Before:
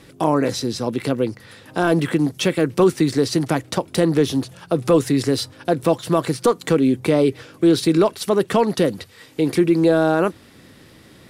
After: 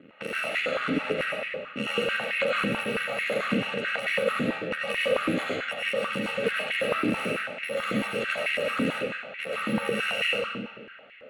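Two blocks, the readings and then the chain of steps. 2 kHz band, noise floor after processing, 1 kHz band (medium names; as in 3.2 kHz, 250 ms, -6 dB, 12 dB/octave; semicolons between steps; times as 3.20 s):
+4.5 dB, -47 dBFS, -7.5 dB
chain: bit-reversed sample order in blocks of 128 samples; level-controlled noise filter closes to 2.7 kHz, open at -13.5 dBFS; treble shelf 3.8 kHz -8 dB; compression 2:1, threshold -27 dBFS, peak gain reduction 6 dB; static phaser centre 2.3 kHz, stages 4; ring modulator 39 Hz; distance through air 150 m; algorithmic reverb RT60 1.7 s, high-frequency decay 0.7×, pre-delay 55 ms, DRR -6 dB; step-sequenced high-pass 9.1 Hz 310–2000 Hz; trim +6.5 dB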